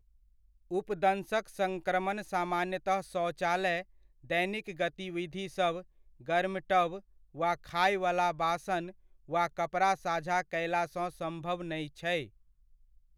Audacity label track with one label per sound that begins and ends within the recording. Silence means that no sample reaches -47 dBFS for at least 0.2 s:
0.710000	3.830000	sound
4.240000	5.820000	sound
6.210000	7.000000	sound
7.350000	8.910000	sound
9.290000	12.270000	sound